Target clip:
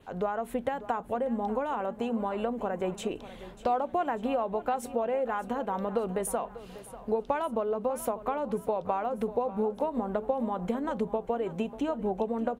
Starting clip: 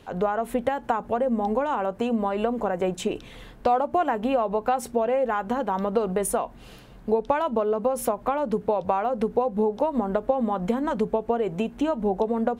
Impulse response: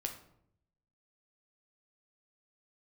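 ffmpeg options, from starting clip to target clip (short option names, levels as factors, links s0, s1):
-filter_complex "[0:a]adynamicequalizer=threshold=0.00141:dfrequency=5200:dqfactor=2.8:tfrequency=5200:tqfactor=2.8:attack=5:release=100:ratio=0.375:range=2.5:mode=cutabove:tftype=bell,asplit=2[s0][s1];[s1]aecho=0:1:593|1186|1779|2372:0.168|0.0739|0.0325|0.0143[s2];[s0][s2]amix=inputs=2:normalize=0,volume=0.501"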